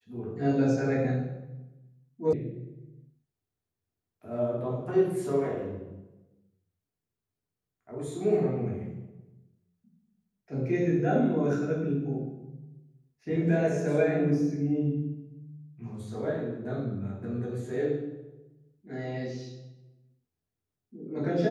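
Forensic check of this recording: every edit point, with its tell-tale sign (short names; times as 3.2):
2.33 sound cut off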